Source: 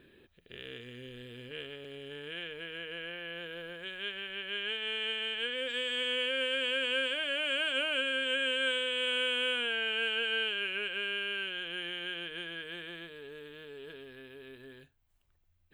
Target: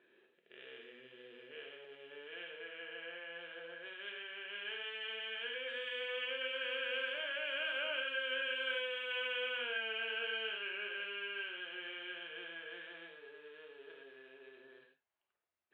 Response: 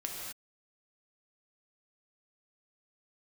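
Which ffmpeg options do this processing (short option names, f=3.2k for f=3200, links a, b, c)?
-filter_complex "[0:a]highpass=490,lowpass=2.4k[a];[1:a]atrim=start_sample=2205,afade=t=out:st=0.19:d=0.01,atrim=end_sample=8820,asetrate=52920,aresample=44100[b];[a][b]afir=irnorm=-1:irlink=0,volume=-2dB"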